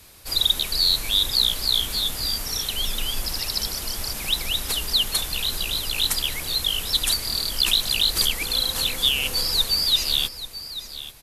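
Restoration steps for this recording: clip repair -9.5 dBFS; inverse comb 837 ms -13.5 dB

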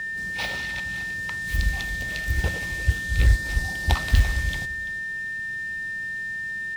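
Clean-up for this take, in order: clip repair -9.5 dBFS; band-stop 1.8 kHz, Q 30; inverse comb 339 ms -16 dB

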